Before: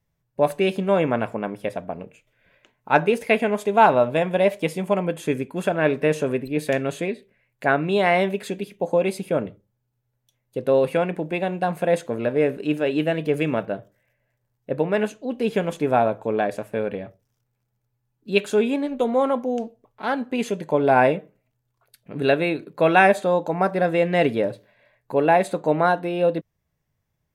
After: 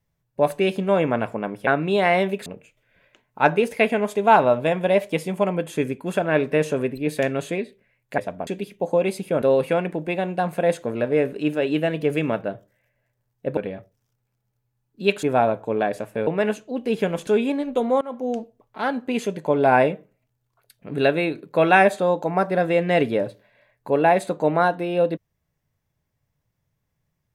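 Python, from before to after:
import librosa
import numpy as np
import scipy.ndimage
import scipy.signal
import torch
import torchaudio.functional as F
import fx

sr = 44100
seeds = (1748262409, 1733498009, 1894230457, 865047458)

y = fx.edit(x, sr, fx.swap(start_s=1.67, length_s=0.29, other_s=7.68, other_length_s=0.79),
    fx.cut(start_s=9.42, length_s=1.24),
    fx.swap(start_s=14.81, length_s=1.0, other_s=16.85, other_length_s=1.66),
    fx.fade_in_from(start_s=19.25, length_s=0.3, floor_db=-24.0), tone=tone)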